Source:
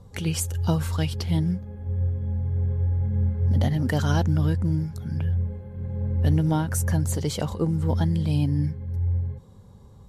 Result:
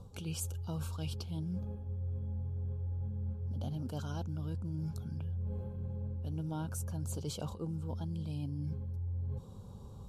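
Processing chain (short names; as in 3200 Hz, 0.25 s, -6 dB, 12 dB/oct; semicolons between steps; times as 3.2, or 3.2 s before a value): reverse; compressor 12:1, threshold -35 dBFS, peak gain reduction 19 dB; reverse; Butterworth band-stop 1900 Hz, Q 2.2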